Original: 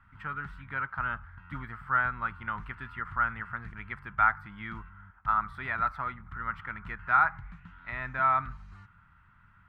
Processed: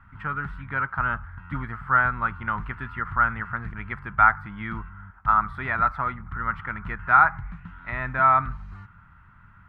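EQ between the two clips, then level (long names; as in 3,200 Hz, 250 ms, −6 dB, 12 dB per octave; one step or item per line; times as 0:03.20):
high-shelf EQ 2,700 Hz −11 dB
+9.0 dB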